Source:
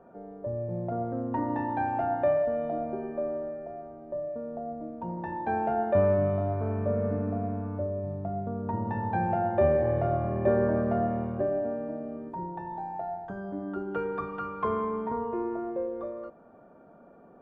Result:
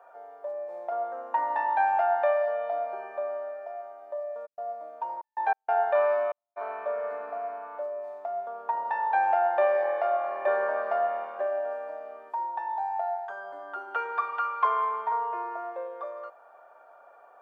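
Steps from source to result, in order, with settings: HPF 720 Hz 24 dB/oct; 4.45–6.56 step gate "x..xxxx.x.xxx" 95 bpm -60 dB; gain +7.5 dB

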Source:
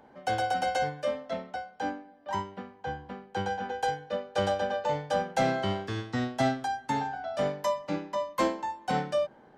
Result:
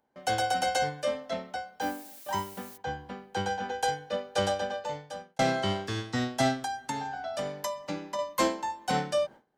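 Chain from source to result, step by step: gate with hold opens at -44 dBFS; high shelf 4300 Hz +11.5 dB; 1.8–2.76 added noise blue -49 dBFS; 4.37–5.39 fade out; 6.63–8.19 compressor, threshold -30 dBFS, peak gain reduction 7.5 dB

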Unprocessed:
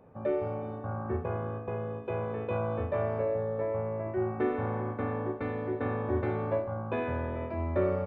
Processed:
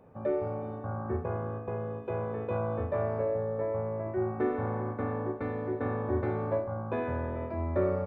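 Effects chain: dynamic EQ 2900 Hz, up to -8 dB, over -60 dBFS, Q 1.8

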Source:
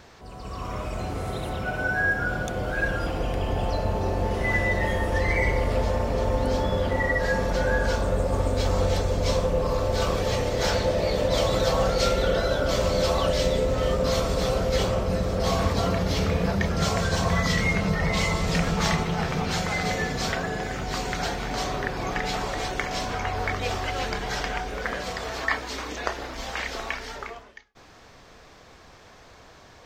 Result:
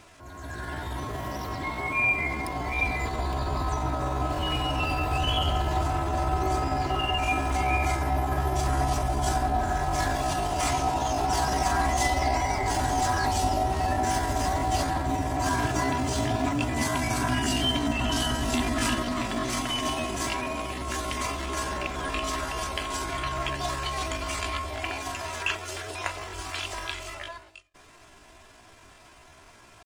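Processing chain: comb 4.3 ms, depth 46%; pitch shift +6.5 st; gain -3 dB

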